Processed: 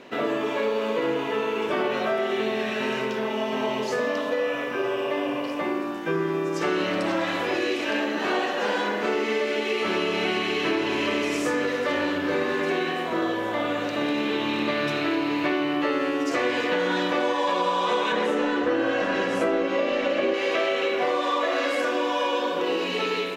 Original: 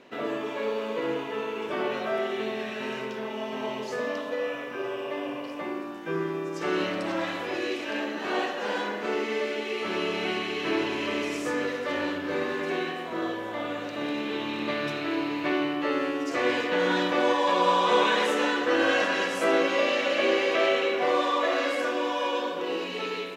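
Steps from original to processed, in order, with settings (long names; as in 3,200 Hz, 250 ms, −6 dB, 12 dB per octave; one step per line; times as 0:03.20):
0:18.12–0:20.34: spectral tilt −2.5 dB per octave
downward compressor 6 to 1, threshold −28 dBFS, peak gain reduction 11 dB
level +7 dB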